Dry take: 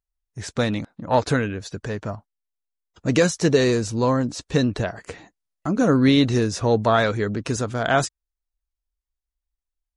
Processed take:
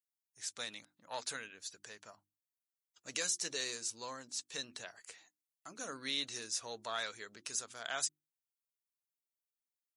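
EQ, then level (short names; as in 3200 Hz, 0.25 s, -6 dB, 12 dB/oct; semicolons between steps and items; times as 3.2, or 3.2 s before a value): differentiator; notches 50/100/150/200/250/300/350 Hz; -4.0 dB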